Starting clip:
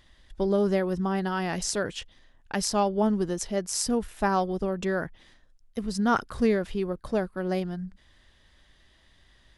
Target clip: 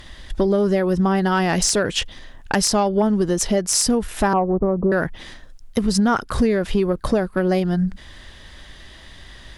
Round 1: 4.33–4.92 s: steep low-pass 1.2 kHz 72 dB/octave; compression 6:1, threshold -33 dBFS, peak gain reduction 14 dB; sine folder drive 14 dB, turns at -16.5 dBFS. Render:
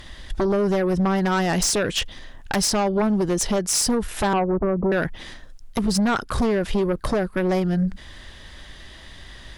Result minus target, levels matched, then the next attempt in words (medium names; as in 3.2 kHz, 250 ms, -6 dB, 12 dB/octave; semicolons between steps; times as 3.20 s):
sine folder: distortion +13 dB
4.33–4.92 s: steep low-pass 1.2 kHz 72 dB/octave; compression 6:1, threshold -33 dBFS, peak gain reduction 14 dB; sine folder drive 14 dB, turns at -9 dBFS